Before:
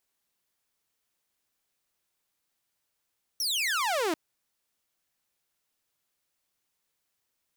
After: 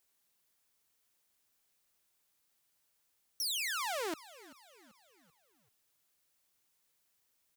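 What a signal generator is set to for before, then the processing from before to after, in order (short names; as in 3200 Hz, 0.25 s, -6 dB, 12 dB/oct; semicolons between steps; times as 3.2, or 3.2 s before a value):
laser zap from 5900 Hz, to 300 Hz, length 0.74 s saw, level -23 dB
high shelf 6400 Hz +4.5 dB; limiter -28.5 dBFS; frequency-shifting echo 0.387 s, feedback 47%, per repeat -52 Hz, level -19 dB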